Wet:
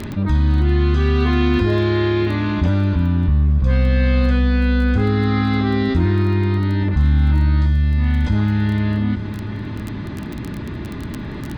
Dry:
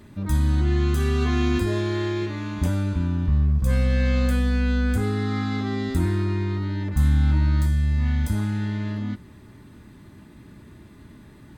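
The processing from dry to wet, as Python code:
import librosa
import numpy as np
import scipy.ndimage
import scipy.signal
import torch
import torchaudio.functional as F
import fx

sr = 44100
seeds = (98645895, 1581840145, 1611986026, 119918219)

p1 = scipy.signal.sosfilt(scipy.signal.butter(4, 4400.0, 'lowpass', fs=sr, output='sos'), x)
p2 = fx.dmg_crackle(p1, sr, seeds[0], per_s=11.0, level_db=-36.0)
p3 = p2 + fx.echo_single(p2, sr, ms=870, db=-20.5, dry=0)
p4 = fx.env_flatten(p3, sr, amount_pct=50)
y = F.gain(torch.from_numpy(p4), 3.0).numpy()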